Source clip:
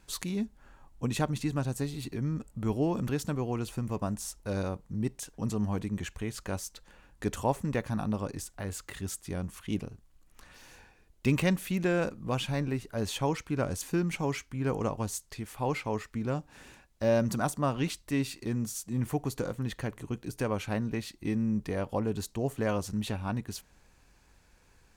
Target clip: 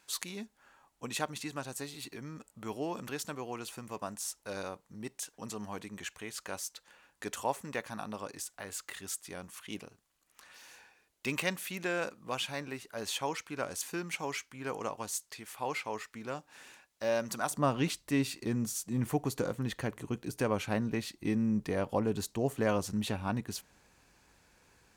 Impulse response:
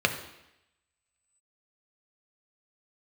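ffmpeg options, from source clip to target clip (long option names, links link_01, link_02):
-af "asetnsamples=nb_out_samples=441:pad=0,asendcmd='17.51 highpass f 140',highpass=frequency=930:poles=1,volume=1dB"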